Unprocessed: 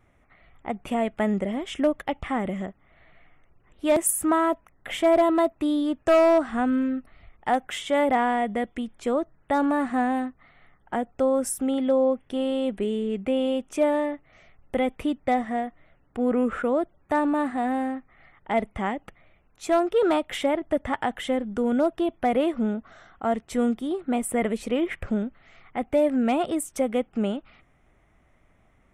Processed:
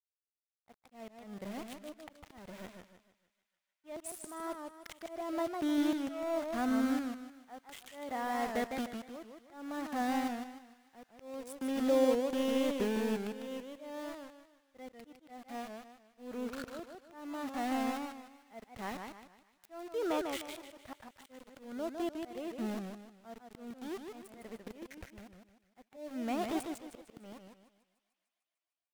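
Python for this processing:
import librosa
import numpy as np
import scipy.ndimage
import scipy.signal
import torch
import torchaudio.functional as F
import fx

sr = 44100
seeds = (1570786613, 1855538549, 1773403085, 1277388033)

y = scipy.signal.sosfilt(scipy.signal.butter(2, 8800.0, 'lowpass', fs=sr, output='sos'), x)
y = np.where(np.abs(y) >= 10.0 ** (-29.0 / 20.0), y, 0.0)
y = fx.auto_swell(y, sr, attack_ms=768.0)
y = fx.echo_wet_highpass(y, sr, ms=150, feedback_pct=75, hz=1600.0, wet_db=-22.0)
y = fx.echo_warbled(y, sr, ms=153, feedback_pct=35, rate_hz=2.8, cents=168, wet_db=-5.5)
y = y * librosa.db_to_amplitude(-6.5)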